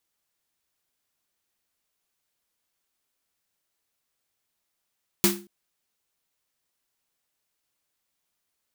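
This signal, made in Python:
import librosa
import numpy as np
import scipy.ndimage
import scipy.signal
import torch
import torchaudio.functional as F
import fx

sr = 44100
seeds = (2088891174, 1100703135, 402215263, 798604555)

y = fx.drum_snare(sr, seeds[0], length_s=0.23, hz=200.0, second_hz=350.0, noise_db=2.5, noise_from_hz=690.0, decay_s=0.39, noise_decay_s=0.27)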